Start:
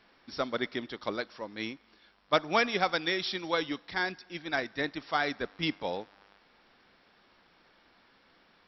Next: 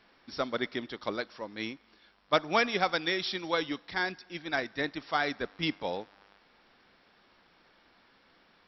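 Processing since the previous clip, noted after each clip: nothing audible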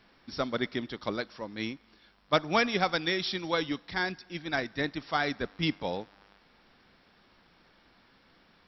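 tone controls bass +7 dB, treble +2 dB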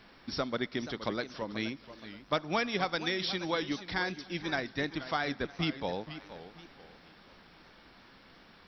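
compressor 2:1, threshold -40 dBFS, peak gain reduction 11.5 dB; warbling echo 0.478 s, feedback 35%, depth 164 cents, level -13 dB; gain +5 dB

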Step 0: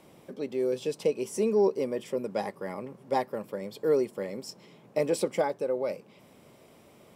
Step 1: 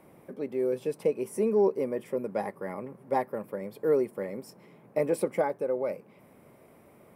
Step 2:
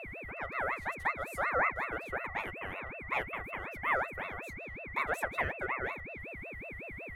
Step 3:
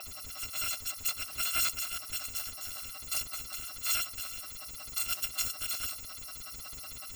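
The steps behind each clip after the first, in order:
band shelf 4700 Hz -11.5 dB
whine 1000 Hz -34 dBFS; ring modulator with a swept carrier 1300 Hz, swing 30%, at 5.4 Hz; gain -4 dB
FFT order left unsorted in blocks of 256 samples

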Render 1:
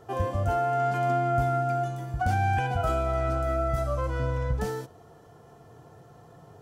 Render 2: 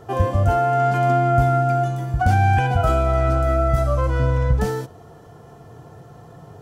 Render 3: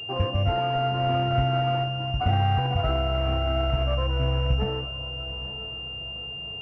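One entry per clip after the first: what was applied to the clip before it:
tone controls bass +3 dB, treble -1 dB; gain +7 dB
diffused feedback echo 0.901 s, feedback 41%, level -14 dB; decimation with a swept rate 8×, swing 100% 1.9 Hz; pulse-width modulation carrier 2800 Hz; gain -6 dB

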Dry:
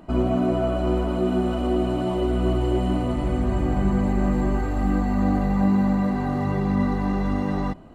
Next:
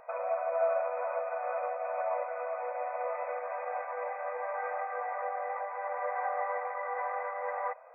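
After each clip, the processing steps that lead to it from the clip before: limiter -17 dBFS, peak gain reduction 8.5 dB; FFT band-pass 460–2600 Hz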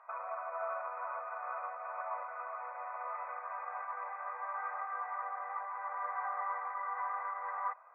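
ladder band-pass 1300 Hz, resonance 55%; gain +6.5 dB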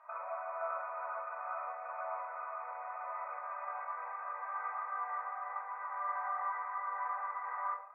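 shoebox room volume 680 m³, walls furnished, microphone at 2.7 m; gain -4 dB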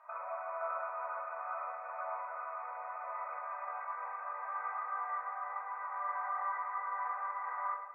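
split-band echo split 740 Hz, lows 0.199 s, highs 0.104 s, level -12 dB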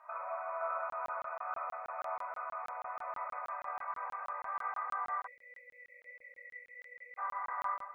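spectral delete 5.26–7.18, 570–1900 Hz; crackling interface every 0.16 s, samples 1024, zero, from 0.9; gain +1 dB

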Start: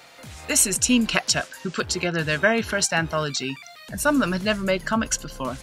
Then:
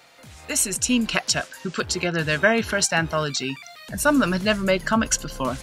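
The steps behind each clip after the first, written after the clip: vocal rider within 5 dB 2 s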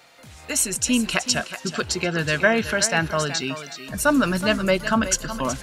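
thinning echo 0.372 s, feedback 22%, high-pass 200 Hz, level -11 dB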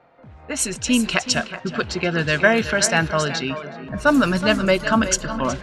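dark delay 0.406 s, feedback 67%, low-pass 1300 Hz, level -16 dB; low-pass opened by the level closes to 970 Hz, open at -15 dBFS; gain +2.5 dB

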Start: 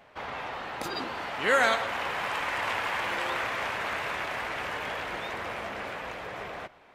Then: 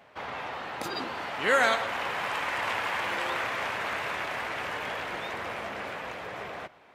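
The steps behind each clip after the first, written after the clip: HPF 71 Hz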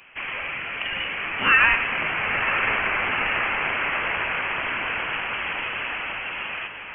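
inverted band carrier 3200 Hz; diffused feedback echo 0.98 s, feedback 50%, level -9 dB; gain +6 dB

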